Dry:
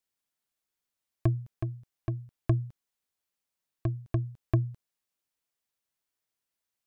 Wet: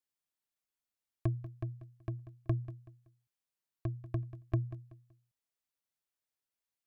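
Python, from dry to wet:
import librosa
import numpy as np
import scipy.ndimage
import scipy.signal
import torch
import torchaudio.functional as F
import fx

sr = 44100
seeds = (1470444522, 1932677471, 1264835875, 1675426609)

y = fx.echo_feedback(x, sr, ms=189, feedback_pct=30, wet_db=-15.0)
y = y * librosa.db_to_amplitude(-6.5)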